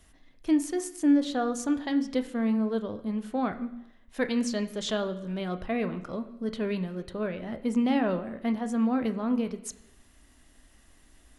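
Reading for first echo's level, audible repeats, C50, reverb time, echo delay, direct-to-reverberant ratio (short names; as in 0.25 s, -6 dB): none, none, 14.0 dB, 0.85 s, none, 8.5 dB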